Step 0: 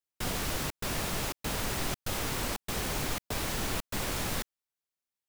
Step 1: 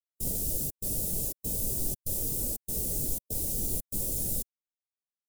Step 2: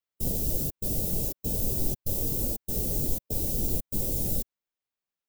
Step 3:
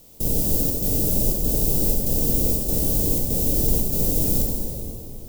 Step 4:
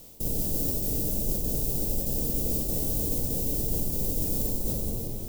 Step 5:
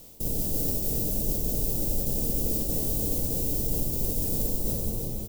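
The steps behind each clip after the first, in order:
drawn EQ curve 550 Hz 0 dB, 1,200 Hz −16 dB, 1,700 Hz −20 dB, 2,500 Hz −10 dB, 9,200 Hz +12 dB, 14,000 Hz +14 dB; every bin expanded away from the loudest bin 1.5 to 1; level −3.5 dB
parametric band 9,800 Hz −9.5 dB 1.5 octaves; level +5.5 dB
compressor on every frequency bin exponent 0.4; dense smooth reverb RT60 3.1 s, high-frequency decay 0.65×, DRR −2 dB
feedback delay that plays each chunk backwards 175 ms, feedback 40%, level −9 dB; reversed playback; downward compressor 5 to 1, threshold −27 dBFS, peak gain reduction 12.5 dB; reversed playback; level +2 dB
single-tap delay 326 ms −8.5 dB

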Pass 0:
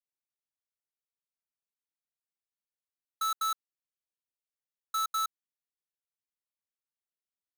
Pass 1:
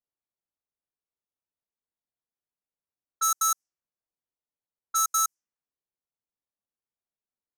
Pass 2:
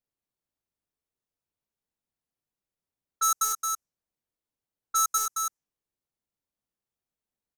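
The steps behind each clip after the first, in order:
high shelf with overshoot 4,700 Hz +7.5 dB, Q 3; low-pass that shuts in the quiet parts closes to 1,000 Hz, open at −27.5 dBFS; level +4 dB
low-shelf EQ 440 Hz +8 dB; single-tap delay 221 ms −5.5 dB

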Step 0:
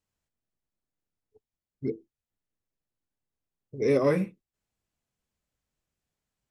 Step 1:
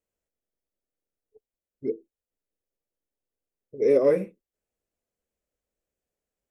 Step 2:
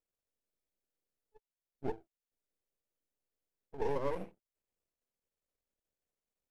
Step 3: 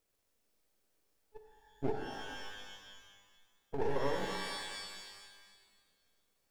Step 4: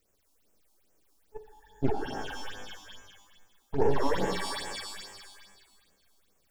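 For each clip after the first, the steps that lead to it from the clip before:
octave-band graphic EQ 125/500/1,000/4,000 Hz −9/+10/−5/−6 dB; level −2.5 dB
downward compressor 6 to 1, threshold −25 dBFS, peak gain reduction 10 dB; half-wave rectification; level −2.5 dB
downward compressor 3 to 1, threshold −44 dBFS, peak gain reduction 12 dB; reverb with rising layers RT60 1.6 s, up +12 semitones, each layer −2 dB, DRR 4 dB; level +10.5 dB
all-pass phaser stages 6, 2.4 Hz, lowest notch 120–4,200 Hz; level +9 dB

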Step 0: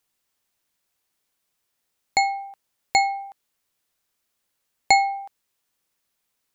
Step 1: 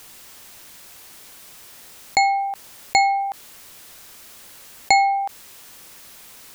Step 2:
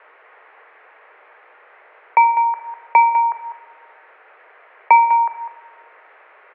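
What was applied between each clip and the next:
envelope flattener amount 50%
far-end echo of a speakerphone 200 ms, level −10 dB; rectangular room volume 860 cubic metres, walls mixed, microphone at 0.59 metres; single-sideband voice off tune +140 Hz 280–2,000 Hz; level +5.5 dB

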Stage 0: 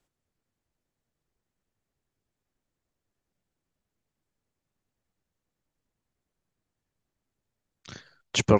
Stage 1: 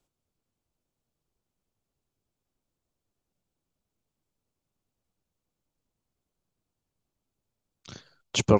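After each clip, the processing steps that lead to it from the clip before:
parametric band 1,800 Hz −8 dB 0.56 octaves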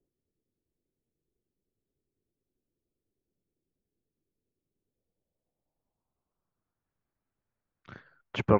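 low-pass filter sweep 390 Hz → 1,700 Hz, 0:04.74–0:06.93
level −3.5 dB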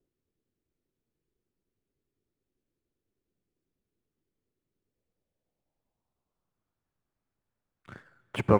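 running median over 9 samples
on a send at −18 dB: convolution reverb RT60 4.2 s, pre-delay 6 ms
on the sum: level +1 dB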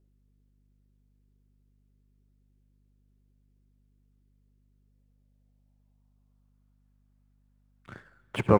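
mains hum 50 Hz, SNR 29 dB
single-tap delay 73 ms −19 dB
level +1 dB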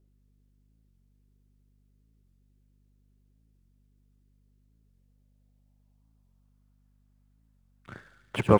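delay with a high-pass on its return 72 ms, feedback 77%, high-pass 3,300 Hz, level −6 dB
wow of a warped record 45 rpm, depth 160 cents
level +1 dB

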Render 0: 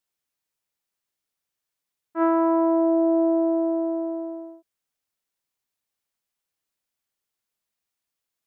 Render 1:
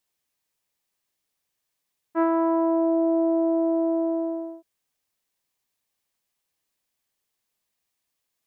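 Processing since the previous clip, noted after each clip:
notch filter 1,400 Hz, Q 10
downward compressor 4 to 1, threshold −24 dBFS, peak gain reduction 6.5 dB
level +4.5 dB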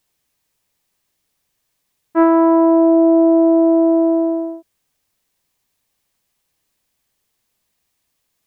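low-shelf EQ 220 Hz +7 dB
level +8.5 dB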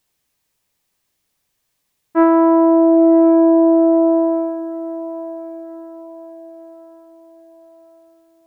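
feedback delay with all-pass diffusion 1,008 ms, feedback 44%, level −14 dB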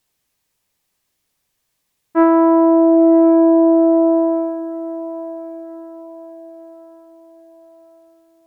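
Ogg Vorbis 192 kbit/s 48,000 Hz

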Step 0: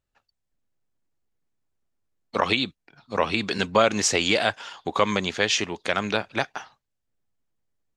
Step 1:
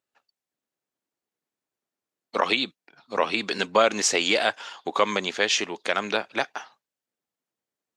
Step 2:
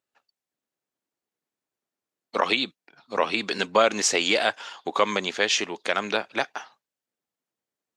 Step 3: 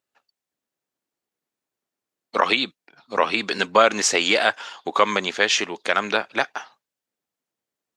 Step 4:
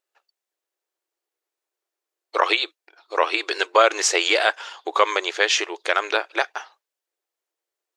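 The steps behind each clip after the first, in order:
high-pass filter 270 Hz 12 dB per octave
no processing that can be heard
dynamic equaliser 1,400 Hz, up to +4 dB, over −33 dBFS, Q 1.1; level +2 dB
linear-phase brick-wall high-pass 310 Hz

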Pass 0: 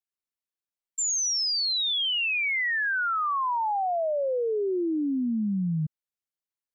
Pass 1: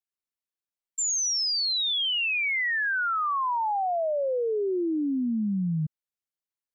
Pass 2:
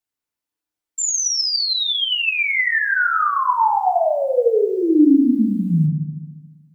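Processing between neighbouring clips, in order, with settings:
no processing that can be heard
floating-point word with a short mantissa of 6 bits; feedback delay network reverb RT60 1 s, low-frequency decay 1.45×, high-frequency decay 0.3×, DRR −1 dB; level +4.5 dB

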